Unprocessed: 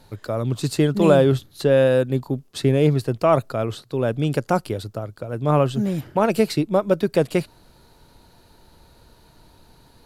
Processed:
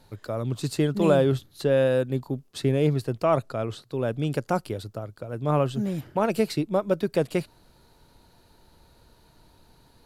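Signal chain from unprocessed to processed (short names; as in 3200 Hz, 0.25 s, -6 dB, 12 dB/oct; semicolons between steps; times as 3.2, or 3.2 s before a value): 3.23–3.81 LPF 11000 Hz 12 dB/oct; gain -5 dB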